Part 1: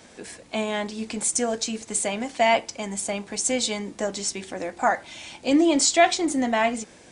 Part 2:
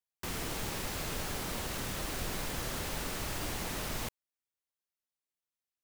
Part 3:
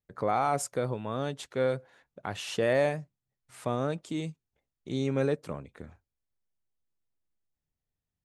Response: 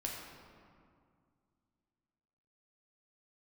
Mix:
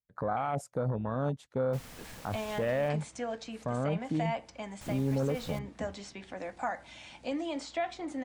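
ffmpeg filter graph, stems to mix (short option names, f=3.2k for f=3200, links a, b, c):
-filter_complex "[0:a]highshelf=f=4.8k:g=-7.5,acrossover=split=280|1800|4600[a][b][c][d];[a]acompressor=threshold=-40dB:ratio=4[e];[b]acompressor=threshold=-24dB:ratio=4[f];[c]acompressor=threshold=-41dB:ratio=4[g];[d]acompressor=threshold=-54dB:ratio=4[h];[e][f][g][h]amix=inputs=4:normalize=0,aeval=exprs='val(0)+0.00141*(sin(2*PI*60*n/s)+sin(2*PI*2*60*n/s)/2+sin(2*PI*3*60*n/s)/3+sin(2*PI*4*60*n/s)/4+sin(2*PI*5*60*n/s)/5)':c=same,adelay=1800,volume=-6.5dB[i];[1:a]adelay=1500,volume=-11.5dB,asplit=3[j][k][l];[j]atrim=end=2.89,asetpts=PTS-STARTPTS,afade=t=out:st=2.886:d=0.004:c=hsin[m];[k]atrim=start=2.89:end=4.81,asetpts=PTS-STARTPTS,volume=0[n];[l]atrim=start=4.81,asetpts=PTS-STARTPTS,afade=t=in:d=0.004:c=hsin[o];[m][n][o]concat=n=3:v=0:a=1[p];[2:a]afwtdn=0.0224,lowshelf=f=380:g=3.5,volume=2.5dB[q];[i][p][q]amix=inputs=3:normalize=0,equalizer=f=370:w=3.1:g=-7.5,alimiter=limit=-22.5dB:level=0:latency=1:release=17"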